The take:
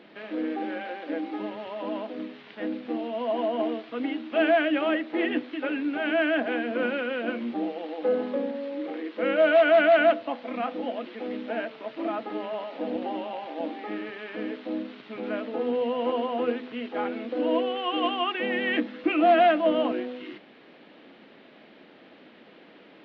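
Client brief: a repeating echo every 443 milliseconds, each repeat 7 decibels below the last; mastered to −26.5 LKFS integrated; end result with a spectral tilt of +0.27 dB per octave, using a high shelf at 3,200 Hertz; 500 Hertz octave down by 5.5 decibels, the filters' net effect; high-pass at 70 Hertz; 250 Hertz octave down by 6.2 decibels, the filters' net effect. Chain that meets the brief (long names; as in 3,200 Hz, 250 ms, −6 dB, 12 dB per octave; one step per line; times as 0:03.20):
high-pass filter 70 Hz
parametric band 250 Hz −5 dB
parametric band 500 Hz −7.5 dB
high-shelf EQ 3,200 Hz +6.5 dB
repeating echo 443 ms, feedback 45%, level −7 dB
level +3 dB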